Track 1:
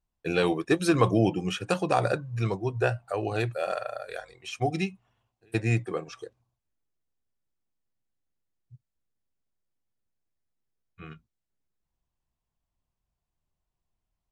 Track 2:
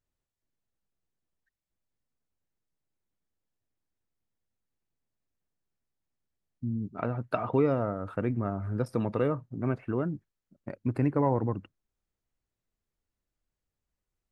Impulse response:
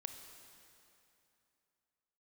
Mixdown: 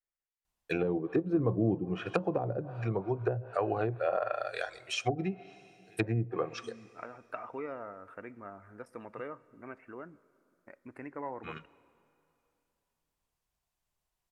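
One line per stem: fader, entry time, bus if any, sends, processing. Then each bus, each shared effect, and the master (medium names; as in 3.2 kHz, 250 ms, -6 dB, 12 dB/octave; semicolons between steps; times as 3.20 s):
+2.0 dB, 0.45 s, send -8 dB, treble shelf 8.4 kHz +3.5 dB
-10.5 dB, 0.00 s, send -8.5 dB, ten-band graphic EQ 125 Hz -11 dB, 2 kHz +8 dB, 4 kHz -12 dB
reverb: on, RT60 2.9 s, pre-delay 22 ms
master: low-pass that closes with the level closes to 340 Hz, closed at -18 dBFS; bass shelf 430 Hz -10 dB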